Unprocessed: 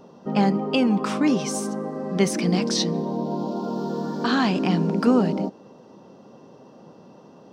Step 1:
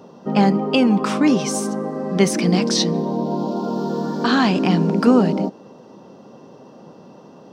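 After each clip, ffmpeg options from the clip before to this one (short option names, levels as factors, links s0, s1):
-af "highpass=83,volume=1.68"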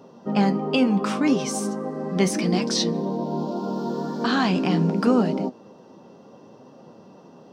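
-af "flanger=delay=7.1:depth=5.8:regen=62:speed=0.74:shape=triangular"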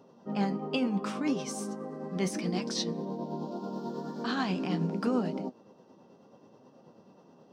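-af "tremolo=f=9.3:d=0.35,volume=0.398"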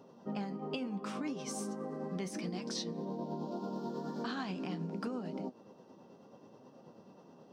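-af "acompressor=threshold=0.0178:ratio=10"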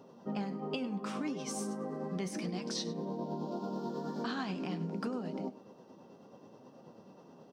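-af "aecho=1:1:101:0.141,volume=1.19"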